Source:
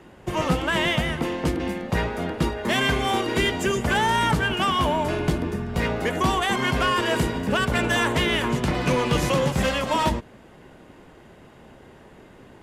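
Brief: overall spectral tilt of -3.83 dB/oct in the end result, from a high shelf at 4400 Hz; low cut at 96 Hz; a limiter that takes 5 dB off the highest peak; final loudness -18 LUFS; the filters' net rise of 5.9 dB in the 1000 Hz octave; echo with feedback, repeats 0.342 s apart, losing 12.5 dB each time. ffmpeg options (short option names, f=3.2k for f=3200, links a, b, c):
-af "highpass=96,equalizer=f=1k:t=o:g=6.5,highshelf=f=4.4k:g=7,alimiter=limit=-11dB:level=0:latency=1,aecho=1:1:342|684|1026:0.237|0.0569|0.0137,volume=3dB"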